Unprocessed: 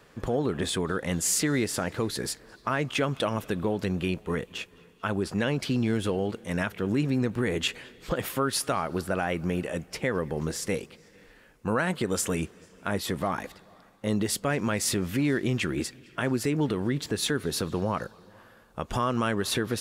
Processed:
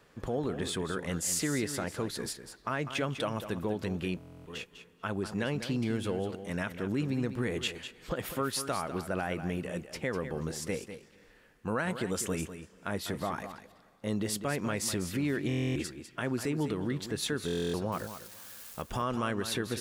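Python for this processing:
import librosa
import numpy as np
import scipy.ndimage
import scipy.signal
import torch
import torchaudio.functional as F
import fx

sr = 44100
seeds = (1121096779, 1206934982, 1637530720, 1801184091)

p1 = fx.crossing_spikes(x, sr, level_db=-31.5, at=(17.92, 18.82))
p2 = p1 + fx.echo_single(p1, sr, ms=199, db=-10.5, dry=0)
p3 = fx.buffer_glitch(p2, sr, at_s=(4.18, 15.48, 17.46), block=1024, repeats=11)
y = p3 * 10.0 ** (-5.5 / 20.0)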